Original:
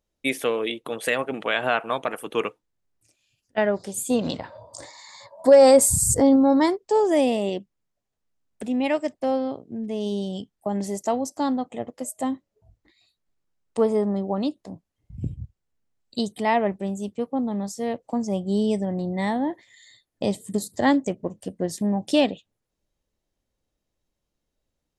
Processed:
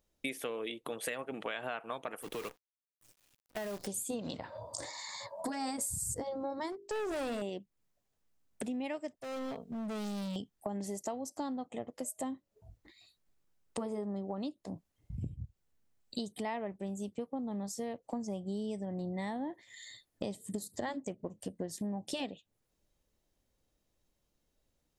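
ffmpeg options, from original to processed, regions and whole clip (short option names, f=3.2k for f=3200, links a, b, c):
-filter_complex "[0:a]asettb=1/sr,asplit=3[a][b][c];[a]atrim=end=2.224[d];[b]atrim=start=2.22:end=3.87,asetpts=PTS-STARTPTS,afade=t=in:d=0.004:c=qsin,afade=t=out:st=1.646:d=0.004:c=qsin,acompressor=threshold=-28dB:ratio=10:attack=3.2:release=140:knee=1:detection=peak,volume=29dB,asoftclip=hard,volume=-29dB,acrusher=bits=8:dc=4:mix=0:aa=0.000001[e];[c]atrim=start=3.866[f];[d][e]acrossfade=d=0.004:c1=hsin:c2=qsin[g];[g][f]acrossfade=d=0.004:c1=qsin:c2=hsin,asettb=1/sr,asplit=3[h][i][j];[h]atrim=end=6.724[k];[i]atrim=start=6.72:end=7.42,asetpts=PTS-STARTPTS,afade=t=in:d=0.004:c=qsin,afade=t=out:st=0.696:d=0.004:c=qsin,bandreject=f=50:t=h:w=6,bandreject=f=100:t=h:w=6,bandreject=f=150:t=h:w=6,bandreject=f=200:t=h:w=6,bandreject=f=250:t=h:w=6,bandreject=f=300:t=h:w=6,bandreject=f=350:t=h:w=6,bandreject=f=400:t=h:w=6,bandreject=f=450:t=h:w=6,asoftclip=type=hard:threshold=-24dB[l];[j]atrim=start=7.416[m];[k][l]acrossfade=d=0.004:c1=hsin:c2=qsin[n];[n][m]acrossfade=d=0.004:c1=qsin:c2=hsin,asettb=1/sr,asplit=3[o][p][q];[o]atrim=end=9.164[r];[p]atrim=start=9.16:end=10.36,asetpts=PTS-STARTPTS,afade=t=in:d=0.004:c=qsin,afade=t=out:st=1.196:d=0.004:c=qsin,equalizer=f=330:t=o:w=0.89:g=-12.5,aecho=1:1:4.4:0.62,atrim=end_sample=52920,asoftclip=type=hard:threshold=-36dB[s];[q]atrim=start=10.356[t];[r][s]acrossfade=d=0.004:c1=hsin:c2=qsin[u];[u][t]acrossfade=d=0.004:c1=qsin:c2=hsin,afftfilt=real='re*lt(hypot(re,im),1.26)':imag='im*lt(hypot(re,im),1.26)':win_size=1024:overlap=0.75,highshelf=f=9.9k:g=5,acompressor=threshold=-38dB:ratio=5,volume=1dB"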